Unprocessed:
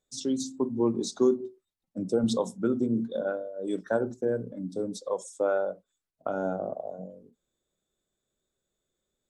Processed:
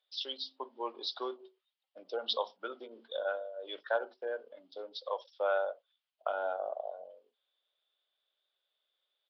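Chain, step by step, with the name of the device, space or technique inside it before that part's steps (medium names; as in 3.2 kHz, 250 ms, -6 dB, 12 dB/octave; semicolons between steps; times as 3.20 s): musical greeting card (resampled via 11.025 kHz; high-pass 620 Hz 24 dB/octave; peaking EQ 3.1 kHz +11.5 dB 0.51 oct)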